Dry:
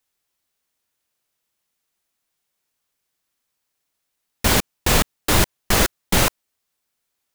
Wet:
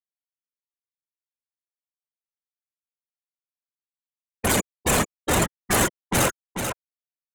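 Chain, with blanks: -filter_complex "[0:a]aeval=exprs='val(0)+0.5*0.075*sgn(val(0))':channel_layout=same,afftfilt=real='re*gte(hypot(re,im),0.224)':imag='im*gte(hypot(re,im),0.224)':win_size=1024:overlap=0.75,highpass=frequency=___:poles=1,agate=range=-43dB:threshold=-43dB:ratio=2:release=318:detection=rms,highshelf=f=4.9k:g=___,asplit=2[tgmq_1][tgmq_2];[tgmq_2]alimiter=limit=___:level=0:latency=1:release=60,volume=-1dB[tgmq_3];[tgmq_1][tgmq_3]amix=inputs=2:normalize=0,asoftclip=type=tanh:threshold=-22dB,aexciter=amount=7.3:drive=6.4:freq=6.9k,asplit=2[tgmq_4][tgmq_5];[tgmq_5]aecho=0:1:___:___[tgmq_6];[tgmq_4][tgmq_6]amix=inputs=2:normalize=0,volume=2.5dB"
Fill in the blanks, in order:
130, 4.5, -15.5dB, 439, 0.473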